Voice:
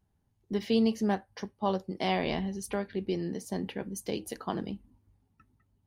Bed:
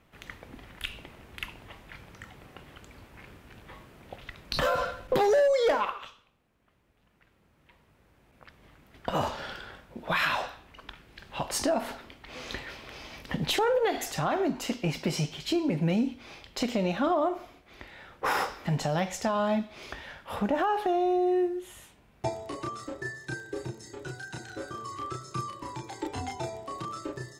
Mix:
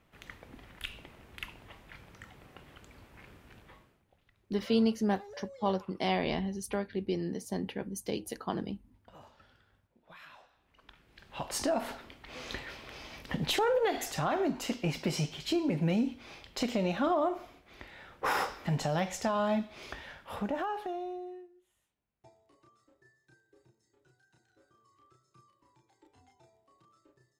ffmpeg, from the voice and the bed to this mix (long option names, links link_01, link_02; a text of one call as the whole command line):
ffmpeg -i stem1.wav -i stem2.wav -filter_complex "[0:a]adelay=4000,volume=-1dB[link_01];[1:a]volume=19dB,afade=type=out:start_time=3.53:duration=0.51:silence=0.0841395,afade=type=in:start_time=10.49:duration=1.34:silence=0.0668344,afade=type=out:start_time=19.93:duration=1.54:silence=0.0501187[link_02];[link_01][link_02]amix=inputs=2:normalize=0" out.wav